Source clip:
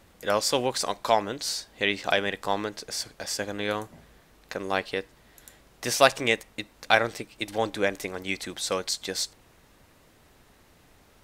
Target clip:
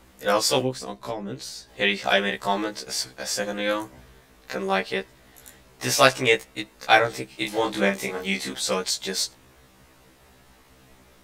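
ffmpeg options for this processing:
ffmpeg -i in.wav -filter_complex "[0:a]asettb=1/sr,asplit=3[link_01][link_02][link_03];[link_01]atrim=end=0.604[link_04];[link_02]atrim=start=0.6:end=1.69,asetpts=PTS-STARTPTS,afade=type=in:duration=0.004:curve=qsin,afade=type=out:start_time=1.086:duration=0.004:curve=qsin,acrossover=split=380[link_05][link_06];[link_06]acompressor=threshold=-39dB:ratio=5[link_07];[link_05][link_07]amix=inputs=2:normalize=0[link_08];[link_03]atrim=start=1.686[link_09];[link_04][link_08]acrossfade=duration=0.004:curve1=hsin:curve2=qsin[link_10];[link_10][link_09]acrossfade=duration=0.004:curve1=qsin:curve2=hsin,asettb=1/sr,asplit=3[link_11][link_12][link_13];[link_11]atrim=end=7.294[link_14];[link_12]atrim=start=7.29:end=8.53,asetpts=PTS-STARTPTS,afade=type=in:duration=0.004:curve=qsin,afade=type=out:start_time=1.236:duration=0.004:curve=qsin,asplit=2[link_15][link_16];[link_16]adelay=30,volume=-4dB[link_17];[link_15][link_17]amix=inputs=2:normalize=0,atrim=end_sample=54684[link_18];[link_13]atrim=start=8.526[link_19];[link_14][link_18]acrossfade=duration=0.004:curve1=hsin:curve2=qsin[link_20];[link_20][link_19]acrossfade=duration=0.004:curve1=qsin:curve2=hsin,afftfilt=real='re*1.73*eq(mod(b,3),0)':imag='im*1.73*eq(mod(b,3),0)':win_size=2048:overlap=0.75,volume=6dB" out.wav

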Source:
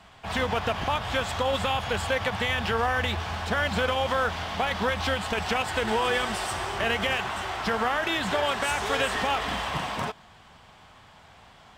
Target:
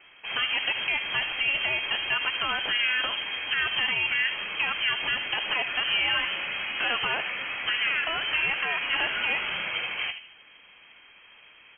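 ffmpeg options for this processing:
ffmpeg -i in.wav -filter_complex "[0:a]asplit=2[link_01][link_02];[link_02]adelay=77,lowpass=frequency=890:poles=1,volume=-6.5dB,asplit=2[link_03][link_04];[link_04]adelay=77,lowpass=frequency=890:poles=1,volume=0.46,asplit=2[link_05][link_06];[link_06]adelay=77,lowpass=frequency=890:poles=1,volume=0.46,asplit=2[link_07][link_08];[link_08]adelay=77,lowpass=frequency=890:poles=1,volume=0.46,asplit=2[link_09][link_10];[link_10]adelay=77,lowpass=frequency=890:poles=1,volume=0.46[link_11];[link_03][link_05][link_07][link_09][link_11]amix=inputs=5:normalize=0[link_12];[link_01][link_12]amix=inputs=2:normalize=0,lowpass=frequency=2800:width_type=q:width=0.5098,lowpass=frequency=2800:width_type=q:width=0.6013,lowpass=frequency=2800:width_type=q:width=0.9,lowpass=frequency=2800:width_type=q:width=2.563,afreqshift=-3300,volume=-1dB" out.wav

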